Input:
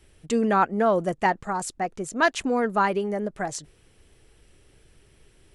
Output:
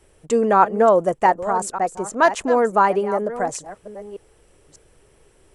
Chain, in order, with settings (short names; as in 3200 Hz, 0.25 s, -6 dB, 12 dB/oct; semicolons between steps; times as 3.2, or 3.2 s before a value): reverse delay 0.595 s, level -13 dB; graphic EQ 500/1000/4000/8000 Hz +8/+7/-3/+6 dB; gain -1 dB